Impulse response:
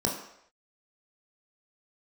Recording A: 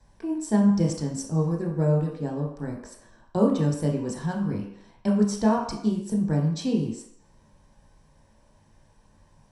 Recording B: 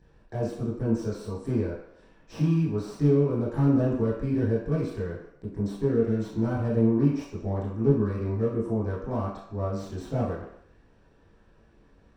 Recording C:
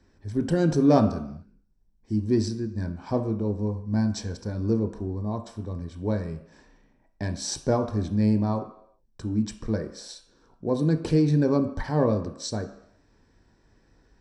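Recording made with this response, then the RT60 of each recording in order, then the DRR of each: A; no single decay rate, no single decay rate, no single decay rate; -1.5 dB, -8.5 dB, 6.0 dB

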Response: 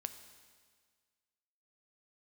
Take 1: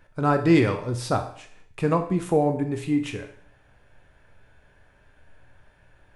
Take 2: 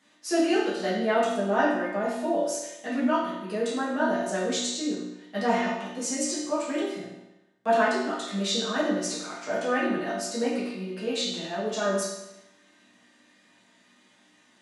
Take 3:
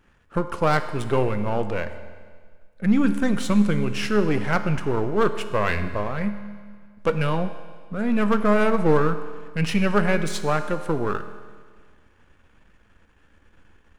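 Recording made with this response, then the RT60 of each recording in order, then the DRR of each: 3; 0.55 s, 0.95 s, 1.7 s; 5.0 dB, -10.5 dB, 9.0 dB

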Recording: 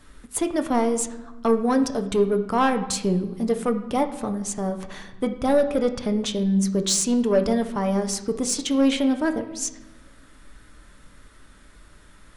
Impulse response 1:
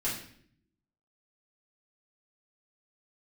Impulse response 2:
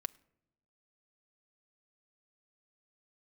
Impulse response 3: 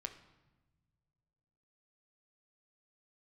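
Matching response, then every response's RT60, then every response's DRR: 3; 0.60 s, no single decay rate, 1.2 s; -9.0 dB, 14.0 dB, 6.0 dB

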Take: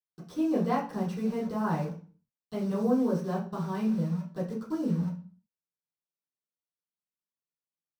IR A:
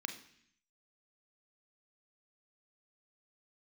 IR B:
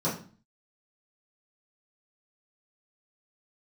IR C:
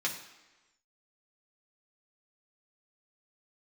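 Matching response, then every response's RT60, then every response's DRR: B; 0.65 s, 0.40 s, 1.2 s; 6.0 dB, -11.0 dB, -3.0 dB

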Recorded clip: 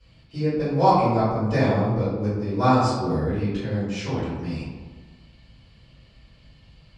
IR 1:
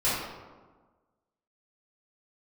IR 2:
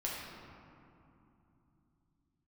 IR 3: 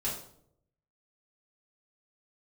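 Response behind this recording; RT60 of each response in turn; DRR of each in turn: 1; 1.4 s, 3.0 s, 0.70 s; -13.0 dB, -5.5 dB, -8.0 dB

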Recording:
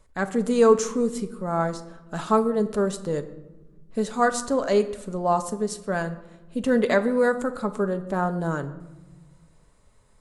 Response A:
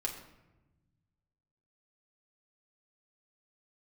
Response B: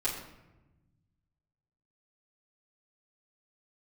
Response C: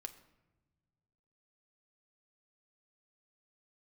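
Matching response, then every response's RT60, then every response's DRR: C; 1.0 s, 1.0 s, no single decay rate; -1.0 dB, -10.5 dB, 7.5 dB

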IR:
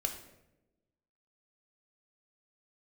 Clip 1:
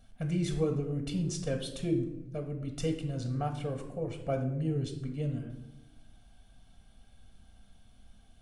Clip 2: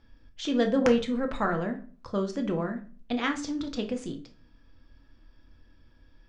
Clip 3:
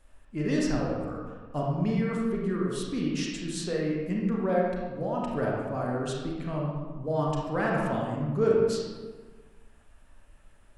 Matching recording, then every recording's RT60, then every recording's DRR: 1; 0.95 s, 0.40 s, 1.5 s; 3.0 dB, 4.0 dB, -3.0 dB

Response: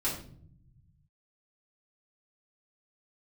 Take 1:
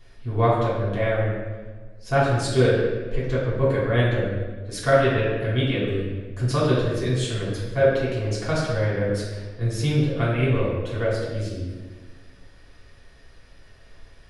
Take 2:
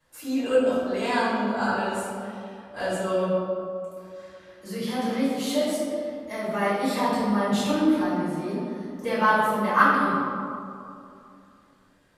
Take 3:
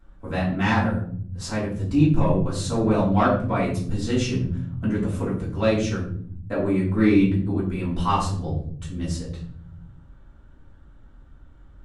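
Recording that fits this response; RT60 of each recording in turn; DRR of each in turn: 3; 1.4 s, 2.6 s, 0.60 s; -8.0 dB, -13.0 dB, -8.5 dB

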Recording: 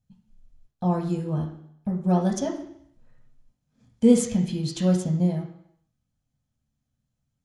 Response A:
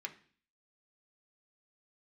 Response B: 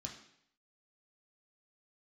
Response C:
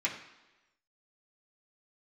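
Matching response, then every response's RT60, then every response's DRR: B; 0.45 s, 0.70 s, 1.1 s; 2.5 dB, -1.5 dB, -5.5 dB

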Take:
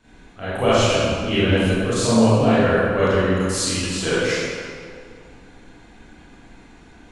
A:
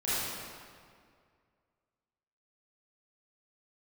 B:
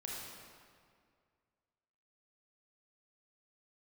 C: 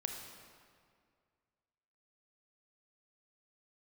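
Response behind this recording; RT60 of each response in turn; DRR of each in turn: A; 2.1 s, 2.1 s, 2.1 s; -12.5 dB, -4.0 dB, 3.0 dB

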